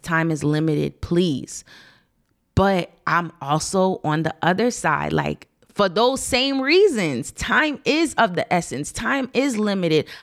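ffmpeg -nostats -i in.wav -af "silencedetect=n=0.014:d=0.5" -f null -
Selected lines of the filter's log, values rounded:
silence_start: 1.80
silence_end: 2.57 | silence_duration: 0.77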